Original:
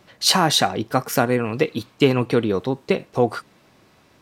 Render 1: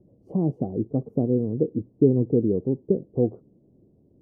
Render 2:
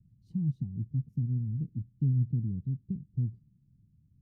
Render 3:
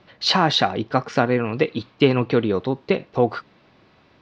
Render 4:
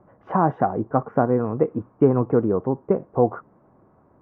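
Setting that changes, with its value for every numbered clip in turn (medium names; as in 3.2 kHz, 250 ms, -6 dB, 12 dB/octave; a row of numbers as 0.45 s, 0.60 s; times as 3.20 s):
inverse Chebyshev low-pass, stop band from: 1.5 kHz, 540 Hz, 12 kHz, 3.9 kHz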